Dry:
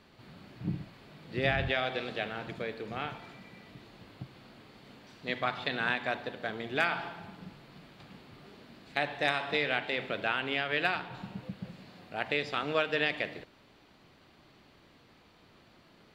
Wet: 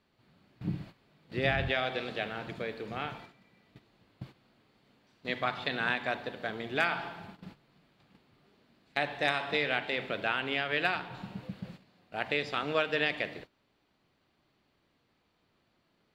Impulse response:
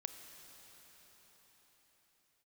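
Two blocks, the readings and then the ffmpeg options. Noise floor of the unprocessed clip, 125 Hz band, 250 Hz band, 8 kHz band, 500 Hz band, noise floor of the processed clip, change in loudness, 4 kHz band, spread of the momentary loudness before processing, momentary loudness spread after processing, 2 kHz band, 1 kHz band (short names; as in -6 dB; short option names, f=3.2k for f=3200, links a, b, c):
-61 dBFS, 0.0 dB, 0.0 dB, n/a, 0.0 dB, -74 dBFS, 0.0 dB, 0.0 dB, 21 LU, 18 LU, 0.0 dB, 0.0 dB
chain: -af "agate=range=-13dB:threshold=-47dB:ratio=16:detection=peak"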